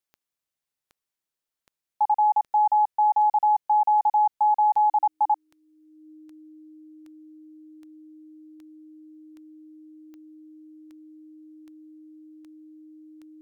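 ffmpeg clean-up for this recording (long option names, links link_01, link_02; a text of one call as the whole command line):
ffmpeg -i in.wav -af "adeclick=threshold=4,bandreject=frequency=310:width=30" out.wav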